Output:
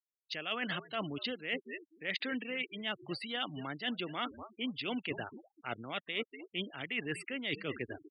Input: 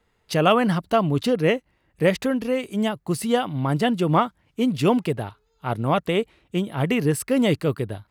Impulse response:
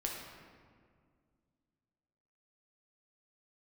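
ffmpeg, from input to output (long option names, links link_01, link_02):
-filter_complex "[0:a]acrossover=split=420 4600:gain=0.1 1 0.178[link_01][link_02][link_03];[link_01][link_02][link_03]amix=inputs=3:normalize=0,asplit=4[link_04][link_05][link_06][link_07];[link_05]adelay=243,afreqshift=-74,volume=-19dB[link_08];[link_06]adelay=486,afreqshift=-148,volume=-27.9dB[link_09];[link_07]adelay=729,afreqshift=-222,volume=-36.7dB[link_10];[link_04][link_08][link_09][link_10]amix=inputs=4:normalize=0,afftfilt=real='re*gte(hypot(re,im),0.0158)':imag='im*gte(hypot(re,im),0.0158)':win_size=1024:overlap=0.75,equalizer=frequency=250:width_type=o:width=1:gain=5,equalizer=frequency=500:width_type=o:width=1:gain=-8,equalizer=frequency=1000:width_type=o:width=1:gain=-12,equalizer=frequency=2000:width_type=o:width=1:gain=6,equalizer=frequency=4000:width_type=o:width=1:gain=8,areverse,acompressor=threshold=-33dB:ratio=20,areverse"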